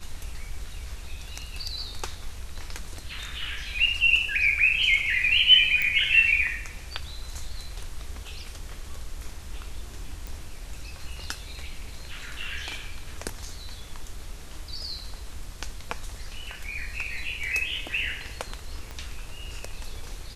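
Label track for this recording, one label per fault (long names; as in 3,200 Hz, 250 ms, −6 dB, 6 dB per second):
5.820000	5.820000	click −12 dBFS
10.270000	10.270000	click
18.910000	18.910000	click −23 dBFS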